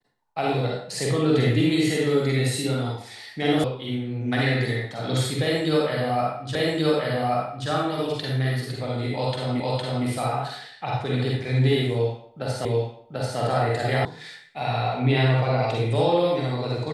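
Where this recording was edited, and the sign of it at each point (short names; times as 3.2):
3.64 sound cut off
6.55 repeat of the last 1.13 s
9.6 repeat of the last 0.46 s
12.65 repeat of the last 0.74 s
14.05 sound cut off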